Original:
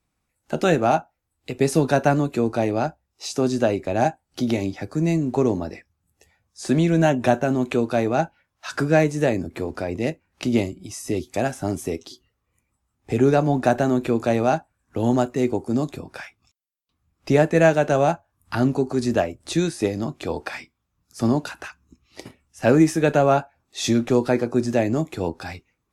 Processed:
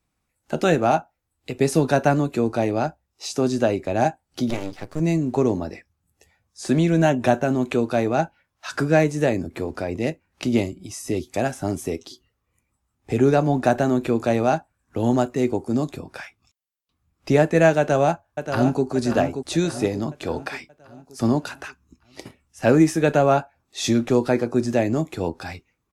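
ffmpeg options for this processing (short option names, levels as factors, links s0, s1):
-filter_complex "[0:a]asettb=1/sr,asplit=3[s0][s1][s2];[s0]atrim=end=4.504[s3];[s1]atrim=start=4.5:end=5,asetpts=PTS-STARTPTS,afade=t=in:d=0.004:c=qsin,afade=t=out:st=0.496:d=0.004:c=qsin,aeval=exprs='max(val(0),0)':c=same[s4];[s2]atrim=start=4.996[s5];[s3][s4]acrossfade=d=0.004:c1=hsin:c2=qsin[s6];[s6][s5]acrossfade=d=0.004:c1=qsin:c2=hsin,asplit=2[s7][s8];[s8]afade=t=in:st=17.79:d=0.01,afade=t=out:st=18.84:d=0.01,aecho=0:1:580|1160|1740|2320|2900|3480:0.398107|0.199054|0.0995268|0.0497634|0.0248817|0.0124408[s9];[s7][s9]amix=inputs=2:normalize=0"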